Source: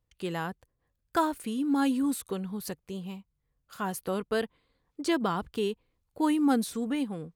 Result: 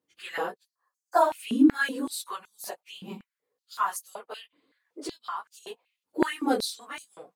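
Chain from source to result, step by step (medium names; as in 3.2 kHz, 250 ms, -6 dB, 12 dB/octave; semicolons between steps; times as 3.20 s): phase randomisation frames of 50 ms; 0.69–1.21 s: time-frequency box 1.9–4 kHz -12 dB; 4.13–5.67 s: compression 6:1, threshold -35 dBFS, peak gain reduction 14.5 dB; step-sequenced high-pass 5.3 Hz 290–6500 Hz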